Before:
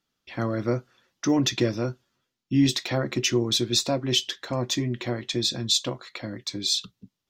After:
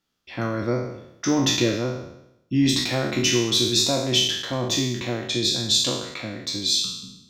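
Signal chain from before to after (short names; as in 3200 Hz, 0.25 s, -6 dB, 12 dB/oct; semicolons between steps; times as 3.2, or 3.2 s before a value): spectral trails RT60 0.83 s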